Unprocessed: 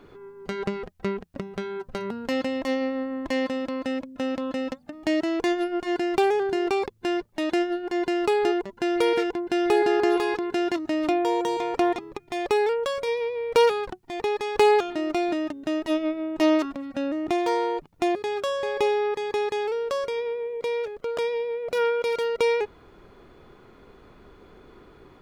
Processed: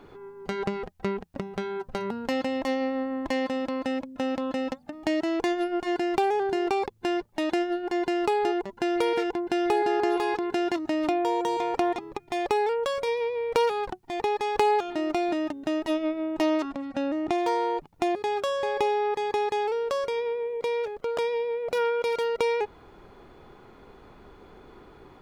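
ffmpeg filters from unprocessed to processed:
-filter_complex "[0:a]asettb=1/sr,asplit=3[a][b][c];[a]atrim=end=16.604[d];[b]atrim=start=16.6:end=17.38,asetpts=PTS-STARTPTS,afade=t=in:d=0.004:c=qsin,afade=t=out:st=0.776:d=0.004:c=qsin,lowpass=9.6k[e];[c]atrim=start=17.376[f];[d][e]acrossfade=d=0.004:c1=hsin:c2=qsin[g];[g][f]acrossfade=d=0.004:c1=qsin:c2=hsin,equalizer=f=830:t=o:w=0.37:g=6,acompressor=threshold=-24dB:ratio=2"

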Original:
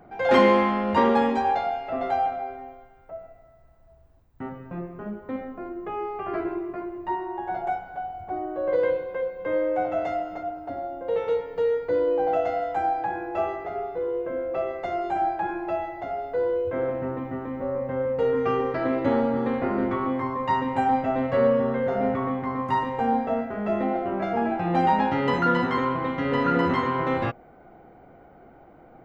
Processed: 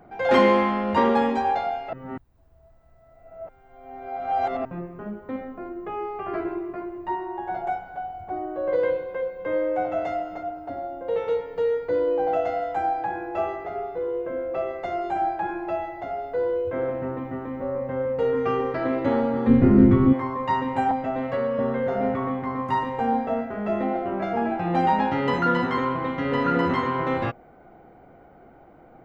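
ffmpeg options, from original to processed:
-filter_complex "[0:a]asplit=3[a][b][c];[a]afade=t=out:st=19.47:d=0.02[d];[b]asubboost=boost=11:cutoff=230,afade=t=in:st=19.47:d=0.02,afade=t=out:st=20.12:d=0.02[e];[c]afade=t=in:st=20.12:d=0.02[f];[d][e][f]amix=inputs=3:normalize=0,asettb=1/sr,asplit=3[g][h][i];[g]atrim=end=20.914[j];[h]atrim=start=20.91:end=21.59,asetpts=PTS-STARTPTS,afade=t=in:d=0.004:c=qsin,afade=t=out:st=0.676:d=0.004:c=qsin,acrossover=split=200|730[k][l][m];[k]acompressor=threshold=-39dB:ratio=4[n];[l]acompressor=threshold=-27dB:ratio=4[o];[m]acompressor=threshold=-31dB:ratio=4[p];[n][o][p]amix=inputs=3:normalize=0[q];[i]atrim=start=21.586[r];[j][q]acrossfade=d=0.004:c1=hsin:c2=qsin[s];[s][r]acrossfade=d=0.004:c1=qsin:c2=hsin,asplit=3[t][u][v];[t]atrim=end=1.932[w];[u]atrim=start=1.928:end=4.652,asetpts=PTS-STARTPTS,areverse[x];[v]atrim=start=4.648[y];[w][x]acrossfade=d=0.004:c1=hsin:c2=hsin[z];[z][y]acrossfade=d=0.004:c1=hsin:c2=hsin"

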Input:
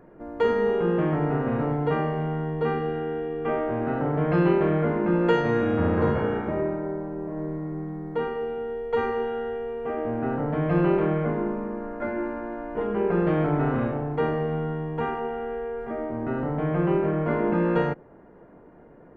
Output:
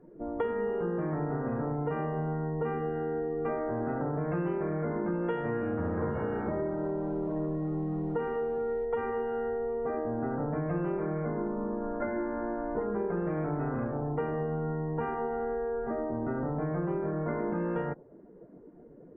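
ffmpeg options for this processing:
-filter_complex "[0:a]asettb=1/sr,asplit=3[a][b][c];[a]atrim=end=5.854[d];[b]atrim=start=5.85:end=8.85,asetpts=PTS-STARTPTS,afade=t=in:d=0.004:c=qsin,afade=t=out:st=2.996:d=0.004:c=qsin,aeval=exprs='val(0)+0.5*0.0133*sgn(val(0))':c=same[e];[c]atrim=start=8.846[f];[d][e]acrossfade=d=0.004:c1=hsin:c2=qsin[g];[g][f]acrossfade=d=0.004:c1=qsin:c2=hsin,lowpass=2.4k,afftdn=nr=16:nf=-42,acompressor=threshold=-31dB:ratio=6,volume=2dB"

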